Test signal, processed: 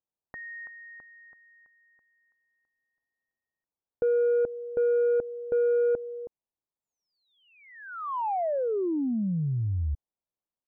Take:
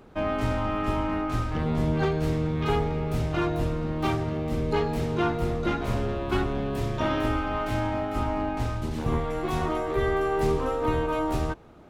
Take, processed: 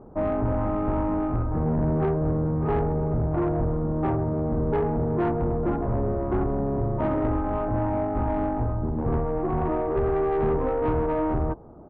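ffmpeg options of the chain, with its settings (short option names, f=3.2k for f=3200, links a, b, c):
-af "lowpass=f=1k:w=0.5412,lowpass=f=1k:w=1.3066,aresample=16000,asoftclip=type=tanh:threshold=-23.5dB,aresample=44100,volume=5dB"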